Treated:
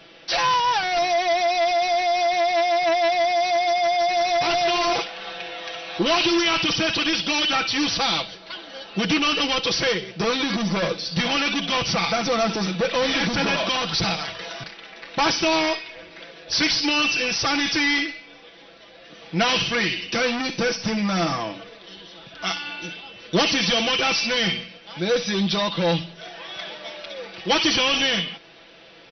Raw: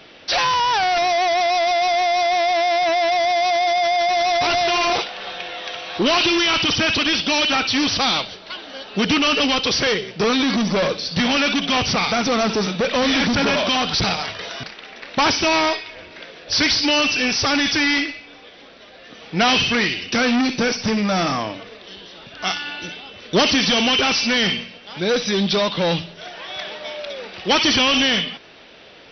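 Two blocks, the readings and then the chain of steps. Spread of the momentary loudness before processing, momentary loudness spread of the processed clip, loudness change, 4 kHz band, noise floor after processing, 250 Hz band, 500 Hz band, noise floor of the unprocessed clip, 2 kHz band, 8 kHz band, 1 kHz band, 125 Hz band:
14 LU, 15 LU, -3.0 dB, -3.5 dB, -47 dBFS, -4.0 dB, -2.5 dB, -44 dBFS, -3.0 dB, no reading, -3.0 dB, -1.5 dB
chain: comb 6 ms, depth 62%; trim -4.5 dB

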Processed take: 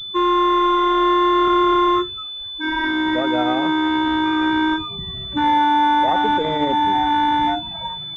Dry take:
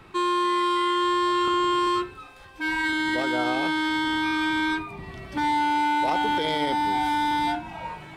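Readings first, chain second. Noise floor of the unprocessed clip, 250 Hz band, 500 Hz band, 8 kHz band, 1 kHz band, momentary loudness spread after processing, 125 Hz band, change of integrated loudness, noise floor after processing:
-47 dBFS, +7.0 dB, +7.0 dB, no reading, +7.0 dB, 10 LU, +5.5 dB, +6.0 dB, -31 dBFS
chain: expander on every frequency bin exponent 1.5; class-D stage that switches slowly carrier 3.5 kHz; trim +8.5 dB

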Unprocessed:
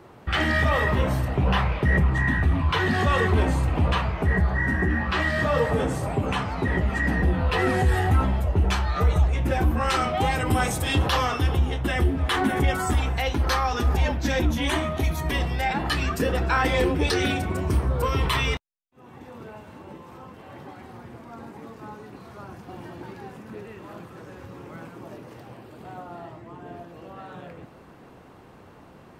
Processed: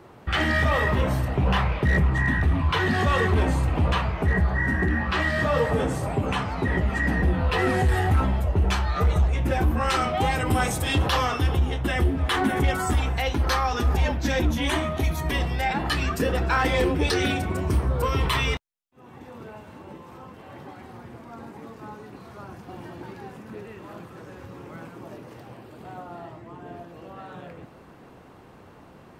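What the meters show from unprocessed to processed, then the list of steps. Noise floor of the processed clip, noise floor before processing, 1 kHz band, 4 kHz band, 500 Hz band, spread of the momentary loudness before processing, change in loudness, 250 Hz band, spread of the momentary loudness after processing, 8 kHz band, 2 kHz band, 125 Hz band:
-49 dBFS, -49 dBFS, 0.0 dB, 0.0 dB, 0.0 dB, 20 LU, 0.0 dB, 0.0 dB, 20 LU, 0.0 dB, 0.0 dB, 0.0 dB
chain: hard clipper -14.5 dBFS, distortion -25 dB

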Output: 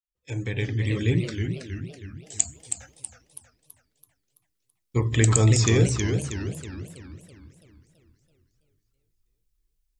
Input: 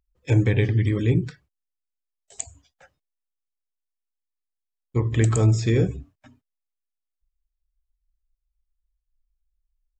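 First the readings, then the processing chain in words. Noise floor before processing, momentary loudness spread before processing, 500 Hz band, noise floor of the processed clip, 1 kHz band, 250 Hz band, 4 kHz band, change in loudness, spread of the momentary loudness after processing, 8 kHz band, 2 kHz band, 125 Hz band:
-84 dBFS, 17 LU, -1.0 dB, -77 dBFS, +2.0 dB, -1.0 dB, +7.0 dB, -3.0 dB, 21 LU, +10.5 dB, +2.0 dB, -1.0 dB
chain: fade-in on the opening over 1.39 s; treble shelf 2.2 kHz +11 dB; modulated delay 325 ms, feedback 50%, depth 209 cents, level -6 dB; trim -1 dB

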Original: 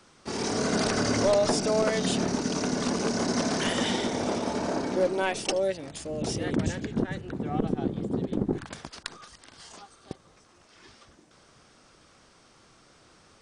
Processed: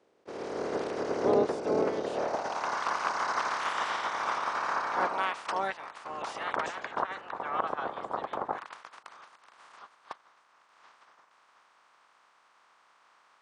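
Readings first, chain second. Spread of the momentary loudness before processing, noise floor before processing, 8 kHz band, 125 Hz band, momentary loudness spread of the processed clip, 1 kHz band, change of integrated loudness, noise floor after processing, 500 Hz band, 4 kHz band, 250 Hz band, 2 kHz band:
16 LU, -59 dBFS, -14.5 dB, -17.0 dB, 15 LU, +4.0 dB, -4.0 dB, -65 dBFS, -4.5 dB, -9.5 dB, -12.0 dB, 0.0 dB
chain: spectral peaks clipped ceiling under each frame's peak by 21 dB; band-pass sweep 430 Hz -> 1.1 kHz, 2.01–2.76 s; attacks held to a fixed rise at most 580 dB/s; trim +5 dB

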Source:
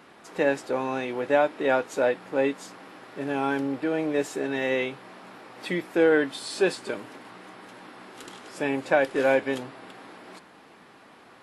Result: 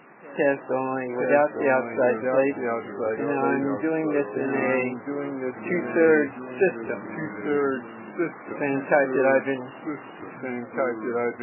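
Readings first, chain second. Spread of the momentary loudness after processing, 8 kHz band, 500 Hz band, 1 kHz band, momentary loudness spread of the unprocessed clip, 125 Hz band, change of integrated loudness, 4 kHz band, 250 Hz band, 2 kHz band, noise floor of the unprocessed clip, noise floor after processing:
12 LU, under -35 dB, +3.0 dB, +3.0 dB, 22 LU, +4.0 dB, +1.0 dB, under -15 dB, +3.5 dB, +2.5 dB, -52 dBFS, -42 dBFS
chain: ever faster or slower copies 769 ms, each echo -2 st, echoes 3, each echo -6 dB; pre-echo 160 ms -23.5 dB; trim +2 dB; MP3 8 kbps 11.025 kHz

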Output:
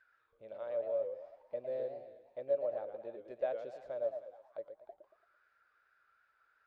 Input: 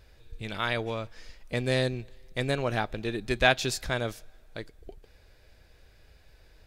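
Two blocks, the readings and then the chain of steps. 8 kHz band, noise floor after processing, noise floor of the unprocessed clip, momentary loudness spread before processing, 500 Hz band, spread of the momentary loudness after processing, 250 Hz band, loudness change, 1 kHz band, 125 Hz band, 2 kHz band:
under -40 dB, -75 dBFS, -59 dBFS, 20 LU, -4.5 dB, 15 LU, -23.5 dB, -10.5 dB, -17.0 dB, under -30 dB, -29.5 dB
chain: in parallel at +2 dB: compression, threshold -35 dBFS, peak gain reduction 18 dB; on the sum: thinning echo 308 ms, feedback 21%, high-pass 710 Hz, level -14 dB; auto-wah 570–1700 Hz, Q 19, down, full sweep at -30.5 dBFS; modulated delay 112 ms, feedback 38%, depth 199 cents, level -8 dB; trim +1.5 dB

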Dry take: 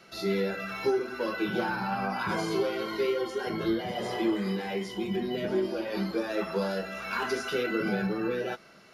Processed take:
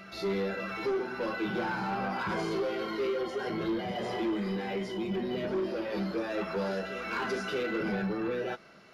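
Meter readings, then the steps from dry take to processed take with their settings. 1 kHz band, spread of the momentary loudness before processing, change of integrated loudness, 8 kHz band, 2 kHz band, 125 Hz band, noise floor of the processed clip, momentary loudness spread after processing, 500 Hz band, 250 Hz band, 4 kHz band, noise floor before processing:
-1.5 dB, 4 LU, -2.5 dB, no reading, -2.0 dB, -2.0 dB, -48 dBFS, 2 LU, -2.5 dB, -2.5 dB, -3.5 dB, -53 dBFS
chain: treble shelf 7 kHz -11 dB; on a send: reverse echo 628 ms -12.5 dB; on the sum: saturation -25.5 dBFS, distortion -14 dB

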